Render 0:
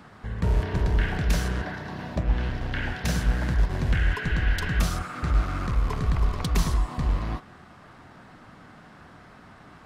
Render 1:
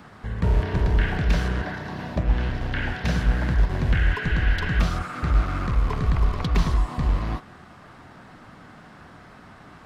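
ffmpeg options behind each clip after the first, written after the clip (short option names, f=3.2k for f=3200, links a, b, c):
-filter_complex "[0:a]acrossover=split=4600[a][b];[b]acompressor=threshold=-54dB:ratio=4:attack=1:release=60[c];[a][c]amix=inputs=2:normalize=0,volume=2.5dB"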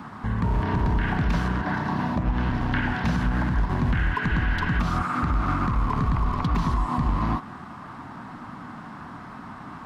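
-af "equalizer=f=125:t=o:w=1:g=4,equalizer=f=250:t=o:w=1:g=10,equalizer=f=500:t=o:w=1:g=-5,equalizer=f=1k:t=o:w=1:g=12,alimiter=limit=-15dB:level=0:latency=1:release=110"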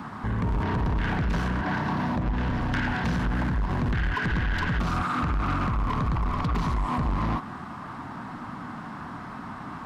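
-af "asoftclip=type=tanh:threshold=-23.5dB,volume=2dB"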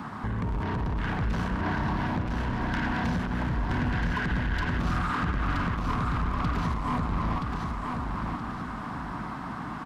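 -af "acompressor=threshold=-27dB:ratio=6,aecho=1:1:974|1948|2922|3896|4870:0.631|0.233|0.0864|0.032|0.0118"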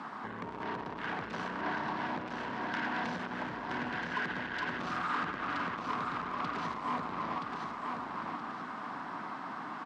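-af "highpass=330,lowpass=6.1k,volume=-3dB"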